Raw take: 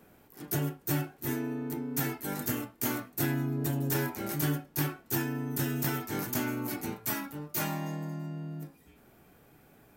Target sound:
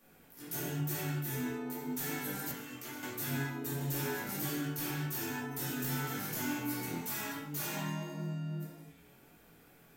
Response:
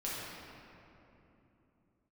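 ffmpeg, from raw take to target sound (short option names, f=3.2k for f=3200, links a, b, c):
-filter_complex "[0:a]highshelf=f=2.3k:g=5.5[a];[1:a]atrim=start_sample=2205,afade=t=out:st=0.44:d=0.01,atrim=end_sample=19845,asetrate=66150,aresample=44100[b];[a][b]afir=irnorm=-1:irlink=0,asplit=2[c][d];[d]alimiter=level_in=5dB:limit=-24dB:level=0:latency=1:release=180,volume=-5dB,volume=-1.5dB[e];[c][e]amix=inputs=2:normalize=0,asettb=1/sr,asplit=3[f][g][h];[f]atrim=end=2.514[i];[g]atrim=start=2.51:end=3.03,asetpts=PTS-STARTPTS,afade=t=in:d=0.004:c=qsin,afade=t=out:st=0.516:d=0.004:c=qsin,acrossover=split=100|830|4900[j][k][l][m];[j]acompressor=threshold=-57dB:ratio=4[n];[k]acompressor=threshold=-39dB:ratio=4[o];[l]acompressor=threshold=-41dB:ratio=4[p];[m]acompressor=threshold=-44dB:ratio=4[q];[n][o][p][q]amix=inputs=4:normalize=0[r];[h]atrim=start=3.026[s];[i][r]acrossfade=d=0.004:c1=hsin:c2=qsin[t];[t][s]acrossfade=d=0.004:c1=qsin:c2=hsin,acrossover=split=1300[u][v];[u]flanger=delay=18.5:depth=6.3:speed=0.95[w];[v]asoftclip=type=hard:threshold=-29dB[x];[w][x]amix=inputs=2:normalize=0,volume=-6dB"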